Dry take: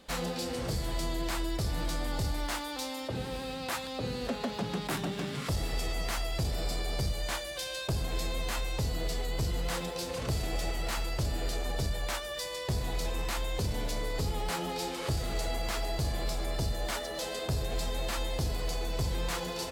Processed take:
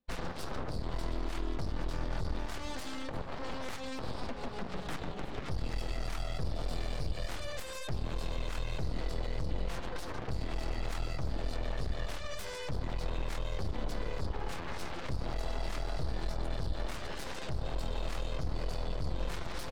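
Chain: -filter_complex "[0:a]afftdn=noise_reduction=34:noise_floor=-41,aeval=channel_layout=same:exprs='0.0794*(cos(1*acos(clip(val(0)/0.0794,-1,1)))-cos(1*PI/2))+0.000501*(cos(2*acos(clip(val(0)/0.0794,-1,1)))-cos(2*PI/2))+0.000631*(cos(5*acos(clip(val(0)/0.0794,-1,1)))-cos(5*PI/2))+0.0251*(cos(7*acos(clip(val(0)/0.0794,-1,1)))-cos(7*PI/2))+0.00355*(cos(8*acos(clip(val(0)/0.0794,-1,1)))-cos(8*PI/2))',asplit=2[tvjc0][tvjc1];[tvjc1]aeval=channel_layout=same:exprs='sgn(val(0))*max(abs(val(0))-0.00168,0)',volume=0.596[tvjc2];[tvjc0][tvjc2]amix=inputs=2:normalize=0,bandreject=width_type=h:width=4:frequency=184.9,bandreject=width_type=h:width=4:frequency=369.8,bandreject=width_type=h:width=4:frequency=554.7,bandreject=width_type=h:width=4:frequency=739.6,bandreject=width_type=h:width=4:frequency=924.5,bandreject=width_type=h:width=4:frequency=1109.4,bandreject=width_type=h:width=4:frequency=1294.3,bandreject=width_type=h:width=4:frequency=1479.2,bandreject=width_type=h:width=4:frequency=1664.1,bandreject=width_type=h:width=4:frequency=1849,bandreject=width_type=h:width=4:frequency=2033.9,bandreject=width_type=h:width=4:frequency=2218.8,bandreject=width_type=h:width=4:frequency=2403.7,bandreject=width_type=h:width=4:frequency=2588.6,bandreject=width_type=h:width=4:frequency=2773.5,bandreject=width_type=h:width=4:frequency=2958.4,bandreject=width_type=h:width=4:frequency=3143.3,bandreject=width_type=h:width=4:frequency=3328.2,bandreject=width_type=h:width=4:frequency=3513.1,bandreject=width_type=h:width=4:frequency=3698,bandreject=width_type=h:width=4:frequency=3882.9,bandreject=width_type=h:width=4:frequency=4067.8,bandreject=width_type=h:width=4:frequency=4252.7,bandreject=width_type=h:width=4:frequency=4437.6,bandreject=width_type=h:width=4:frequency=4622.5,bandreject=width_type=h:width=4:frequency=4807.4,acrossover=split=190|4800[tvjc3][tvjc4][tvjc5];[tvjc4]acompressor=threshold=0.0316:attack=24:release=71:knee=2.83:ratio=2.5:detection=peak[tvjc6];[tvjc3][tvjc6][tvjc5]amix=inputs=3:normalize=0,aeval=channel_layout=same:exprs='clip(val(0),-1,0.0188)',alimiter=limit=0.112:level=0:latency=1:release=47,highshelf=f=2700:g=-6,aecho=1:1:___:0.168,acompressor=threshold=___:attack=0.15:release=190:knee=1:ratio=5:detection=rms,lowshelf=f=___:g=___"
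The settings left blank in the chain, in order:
344, 0.0282, 63, 10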